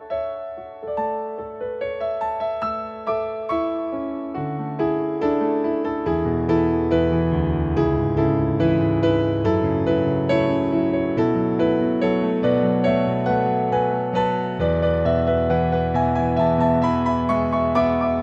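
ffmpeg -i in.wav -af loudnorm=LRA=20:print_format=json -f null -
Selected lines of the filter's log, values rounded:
"input_i" : "-21.0",
"input_tp" : "-6.4",
"input_lra" : "5.3",
"input_thresh" : "-31.1",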